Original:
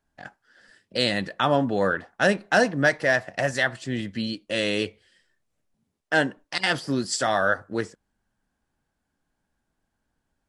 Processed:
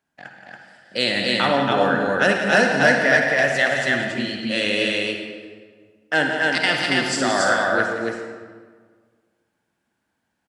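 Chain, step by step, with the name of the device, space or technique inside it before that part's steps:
stadium PA (high-pass filter 140 Hz 12 dB per octave; parametric band 2,400 Hz +5 dB 0.97 octaves; loudspeakers that aren't time-aligned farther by 60 metres −9 dB, 96 metres −2 dB; convolution reverb RT60 1.7 s, pre-delay 46 ms, DRR 3 dB)

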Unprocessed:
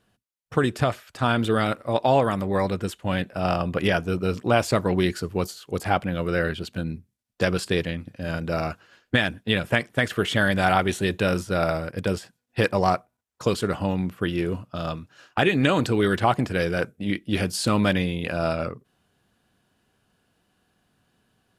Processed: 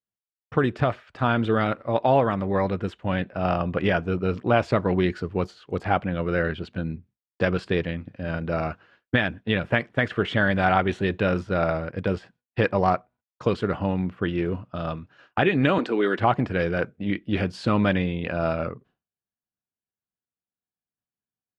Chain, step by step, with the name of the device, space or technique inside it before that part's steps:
hearing-loss simulation (low-pass filter 2,700 Hz 12 dB per octave; downward expander −49 dBFS)
0:15.78–0:16.19: high-pass filter 240 Hz 24 dB per octave

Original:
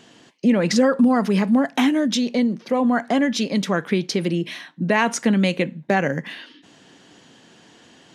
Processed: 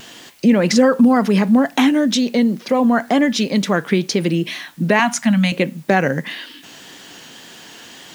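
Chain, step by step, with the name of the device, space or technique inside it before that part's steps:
0:04.99–0:05.52: elliptic band-stop filter 250–630 Hz
noise-reduction cassette on a plain deck (one half of a high-frequency compander encoder only; tape wow and flutter; white noise bed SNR 35 dB)
level +4 dB

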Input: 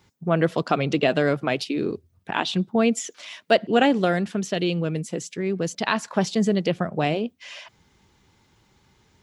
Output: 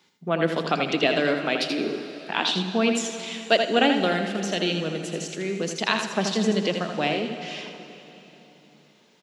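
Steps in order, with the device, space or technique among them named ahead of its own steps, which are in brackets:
PA in a hall (high-pass filter 180 Hz 24 dB per octave; parametric band 3,500 Hz +7 dB 1.5 octaves; single-tap delay 81 ms −7 dB; convolution reverb RT60 3.5 s, pre-delay 49 ms, DRR 8.5 dB)
level −3 dB

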